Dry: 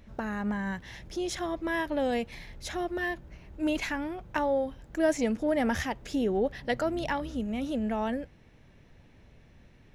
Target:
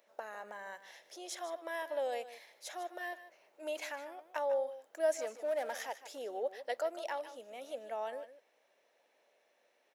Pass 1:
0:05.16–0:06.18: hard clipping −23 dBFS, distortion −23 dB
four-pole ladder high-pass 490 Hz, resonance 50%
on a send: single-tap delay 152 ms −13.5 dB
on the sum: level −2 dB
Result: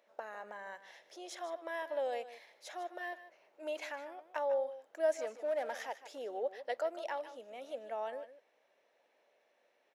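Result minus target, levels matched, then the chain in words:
8,000 Hz band −6.0 dB
0:05.16–0:06.18: hard clipping −23 dBFS, distortion −23 dB
four-pole ladder high-pass 490 Hz, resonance 50%
high-shelf EQ 6,500 Hz +11.5 dB
on a send: single-tap delay 152 ms −13.5 dB
on the sum: level −2 dB

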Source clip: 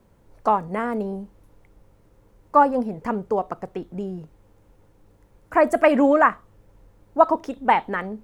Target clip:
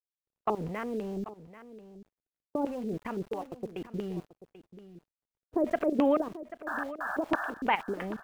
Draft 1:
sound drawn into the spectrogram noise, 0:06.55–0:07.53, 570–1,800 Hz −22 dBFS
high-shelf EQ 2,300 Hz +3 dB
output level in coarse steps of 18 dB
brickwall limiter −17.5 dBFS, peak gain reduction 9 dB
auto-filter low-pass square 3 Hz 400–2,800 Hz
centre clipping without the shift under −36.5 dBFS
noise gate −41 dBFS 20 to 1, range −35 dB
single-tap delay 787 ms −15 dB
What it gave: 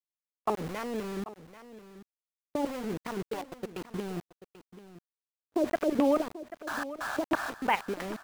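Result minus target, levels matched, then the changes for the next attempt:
centre clipping without the shift: distortion +11 dB
change: centre clipping without the shift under −48 dBFS

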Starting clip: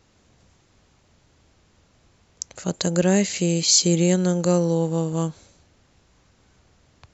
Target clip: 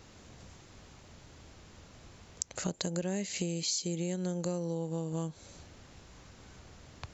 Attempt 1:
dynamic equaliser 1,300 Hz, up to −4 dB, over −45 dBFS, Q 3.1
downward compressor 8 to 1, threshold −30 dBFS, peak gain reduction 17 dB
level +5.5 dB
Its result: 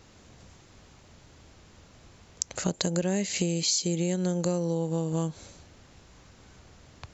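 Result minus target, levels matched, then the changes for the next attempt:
downward compressor: peak gain reduction −6.5 dB
change: downward compressor 8 to 1, threshold −37.5 dBFS, peak gain reduction 23.5 dB

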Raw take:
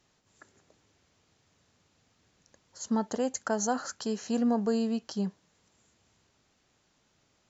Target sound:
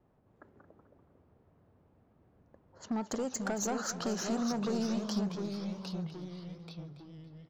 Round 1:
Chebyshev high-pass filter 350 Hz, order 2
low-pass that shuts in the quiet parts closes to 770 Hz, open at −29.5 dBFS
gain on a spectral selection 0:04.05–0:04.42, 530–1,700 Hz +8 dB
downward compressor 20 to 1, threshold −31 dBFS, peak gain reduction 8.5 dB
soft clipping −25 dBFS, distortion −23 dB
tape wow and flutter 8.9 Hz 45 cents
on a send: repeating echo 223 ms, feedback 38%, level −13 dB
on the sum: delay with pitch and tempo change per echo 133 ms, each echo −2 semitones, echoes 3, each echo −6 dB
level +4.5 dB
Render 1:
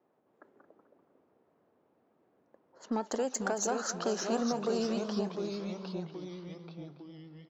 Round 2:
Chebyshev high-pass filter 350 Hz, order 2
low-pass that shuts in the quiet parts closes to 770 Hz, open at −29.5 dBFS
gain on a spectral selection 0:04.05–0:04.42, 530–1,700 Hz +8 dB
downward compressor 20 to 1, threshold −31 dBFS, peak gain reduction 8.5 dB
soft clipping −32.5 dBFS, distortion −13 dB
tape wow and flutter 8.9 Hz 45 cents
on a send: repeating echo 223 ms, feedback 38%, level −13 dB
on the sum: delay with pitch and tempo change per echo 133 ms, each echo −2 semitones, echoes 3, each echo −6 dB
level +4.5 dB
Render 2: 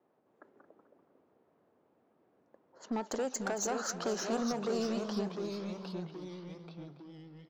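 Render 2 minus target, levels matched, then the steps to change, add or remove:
250 Hz band −2.5 dB
remove: Chebyshev high-pass filter 350 Hz, order 2

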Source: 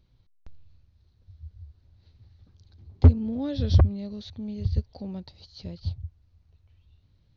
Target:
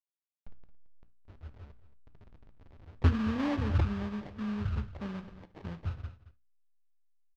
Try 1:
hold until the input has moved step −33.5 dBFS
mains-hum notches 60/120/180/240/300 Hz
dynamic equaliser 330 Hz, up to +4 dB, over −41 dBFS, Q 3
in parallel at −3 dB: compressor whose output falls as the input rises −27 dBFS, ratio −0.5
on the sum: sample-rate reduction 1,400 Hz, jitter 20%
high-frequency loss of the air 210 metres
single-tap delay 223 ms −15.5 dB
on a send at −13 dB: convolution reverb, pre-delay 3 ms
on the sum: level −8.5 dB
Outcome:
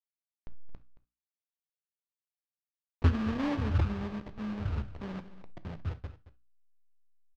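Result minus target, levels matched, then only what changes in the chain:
hold until the input has moved: distortion +10 dB
change: hold until the input has moved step −45 dBFS

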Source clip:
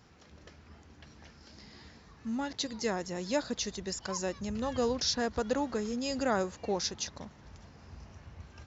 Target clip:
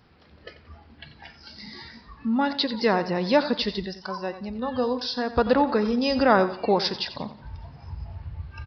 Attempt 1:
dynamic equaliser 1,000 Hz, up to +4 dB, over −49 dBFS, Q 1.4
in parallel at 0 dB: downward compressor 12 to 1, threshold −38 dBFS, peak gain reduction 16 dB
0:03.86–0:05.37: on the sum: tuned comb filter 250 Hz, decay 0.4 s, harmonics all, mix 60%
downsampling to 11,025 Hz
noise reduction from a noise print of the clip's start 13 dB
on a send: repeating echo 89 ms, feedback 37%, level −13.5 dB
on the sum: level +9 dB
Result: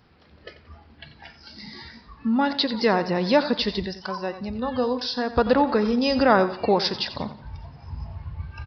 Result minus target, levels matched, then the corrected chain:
downward compressor: peak gain reduction −8.5 dB
dynamic equaliser 1,000 Hz, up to +4 dB, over −49 dBFS, Q 1.4
in parallel at 0 dB: downward compressor 12 to 1, threshold −47.5 dBFS, peak gain reduction 25 dB
0:03.86–0:05.37: on the sum: tuned comb filter 250 Hz, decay 0.4 s, harmonics all, mix 60%
downsampling to 11,025 Hz
noise reduction from a noise print of the clip's start 13 dB
on a send: repeating echo 89 ms, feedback 37%, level −13.5 dB
on the sum: level +9 dB

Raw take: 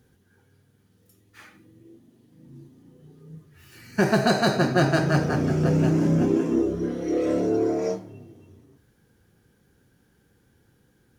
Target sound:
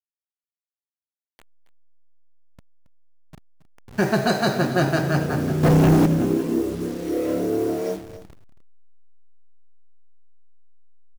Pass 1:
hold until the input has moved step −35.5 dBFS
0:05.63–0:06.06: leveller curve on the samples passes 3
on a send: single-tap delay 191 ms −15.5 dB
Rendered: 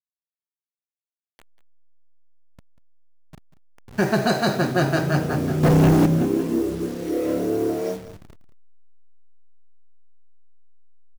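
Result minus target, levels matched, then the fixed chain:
echo 82 ms early
hold until the input has moved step −35.5 dBFS
0:05.63–0:06.06: leveller curve on the samples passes 3
on a send: single-tap delay 273 ms −15.5 dB

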